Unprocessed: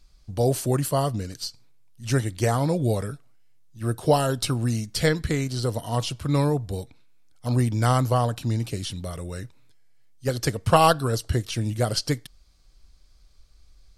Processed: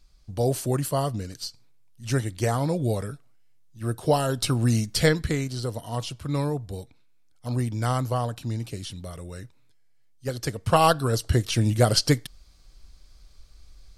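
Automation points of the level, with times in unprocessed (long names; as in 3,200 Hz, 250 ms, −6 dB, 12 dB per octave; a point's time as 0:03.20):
0:04.23 −2 dB
0:04.78 +4 dB
0:05.71 −4.5 dB
0:10.46 −4.5 dB
0:11.60 +4.5 dB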